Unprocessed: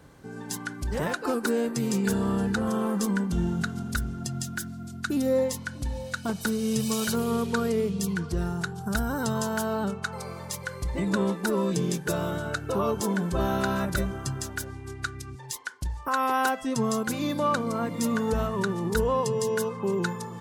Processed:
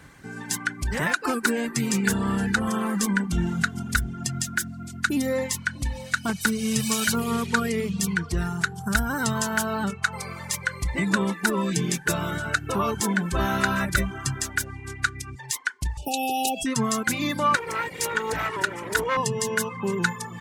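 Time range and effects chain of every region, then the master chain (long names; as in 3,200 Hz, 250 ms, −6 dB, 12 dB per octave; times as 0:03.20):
0:15.97–0:16.66: linear-phase brick-wall band-stop 870–2,400 Hz + high-shelf EQ 10,000 Hz +4 dB + envelope flattener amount 50%
0:17.55–0:19.17: lower of the sound and its delayed copy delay 2.1 ms + high-pass filter 140 Hz
whole clip: reverb reduction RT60 0.52 s; graphic EQ with 10 bands 500 Hz −6 dB, 2,000 Hz +9 dB, 8,000 Hz +4 dB; level +3.5 dB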